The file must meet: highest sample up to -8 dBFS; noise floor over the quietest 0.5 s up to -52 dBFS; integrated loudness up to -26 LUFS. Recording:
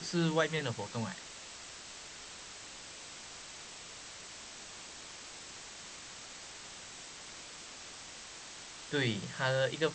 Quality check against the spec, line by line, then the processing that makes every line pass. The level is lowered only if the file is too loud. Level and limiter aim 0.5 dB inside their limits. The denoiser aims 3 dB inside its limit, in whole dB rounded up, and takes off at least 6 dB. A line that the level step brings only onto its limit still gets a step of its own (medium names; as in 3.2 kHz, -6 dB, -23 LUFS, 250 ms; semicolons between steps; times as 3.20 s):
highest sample -15.5 dBFS: pass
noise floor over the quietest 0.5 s -49 dBFS: fail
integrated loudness -39.5 LUFS: pass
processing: noise reduction 6 dB, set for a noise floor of -49 dBFS